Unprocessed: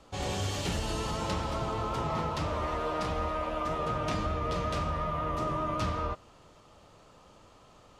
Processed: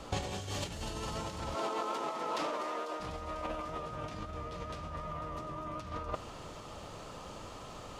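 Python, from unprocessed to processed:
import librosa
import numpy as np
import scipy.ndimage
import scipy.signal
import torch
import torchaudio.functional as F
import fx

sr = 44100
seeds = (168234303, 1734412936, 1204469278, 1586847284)

y = fx.highpass(x, sr, hz=270.0, slope=24, at=(1.55, 3.0))
y = fx.over_compress(y, sr, threshold_db=-38.0, ratio=-0.5)
y = fx.echo_wet_highpass(y, sr, ms=248, feedback_pct=79, hz=5000.0, wet_db=-8.5)
y = F.gain(torch.from_numpy(y), 2.0).numpy()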